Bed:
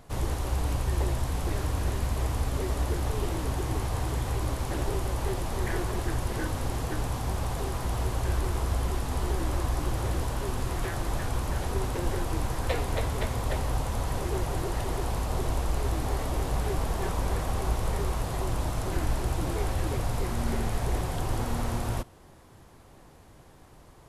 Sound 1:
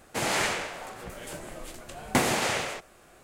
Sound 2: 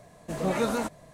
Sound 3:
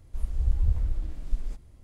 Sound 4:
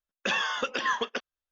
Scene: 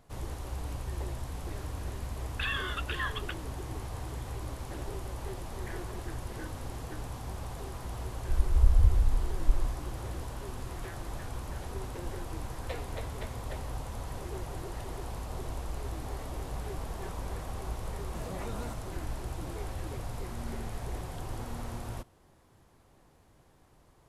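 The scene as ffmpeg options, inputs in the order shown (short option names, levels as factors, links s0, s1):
-filter_complex "[0:a]volume=0.355[s0];[4:a]asuperpass=centerf=2200:order=20:qfactor=0.66[s1];[3:a]aecho=1:1:1.9:0.49[s2];[2:a]acompressor=threshold=0.0316:ratio=6:attack=3.2:release=140:knee=1:detection=peak[s3];[s1]atrim=end=1.51,asetpts=PTS-STARTPTS,volume=0.562,afade=t=in:d=0.004:c=hsin,afade=t=out:st=1.506:d=0.004:c=hsin,adelay=2140[s4];[s2]atrim=end=1.83,asetpts=PTS-STARTPTS,volume=0.891,afade=t=in:d=0.004:c=hsin,afade=t=out:st=1.826:d=0.004:c=hsin,adelay=8160[s5];[s3]atrim=end=1.13,asetpts=PTS-STARTPTS,volume=0.398,afade=t=in:d=0.004:c=hsin,afade=t=out:st=1.126:d=0.004:c=hsin,adelay=17860[s6];[s0][s4][s5][s6]amix=inputs=4:normalize=0"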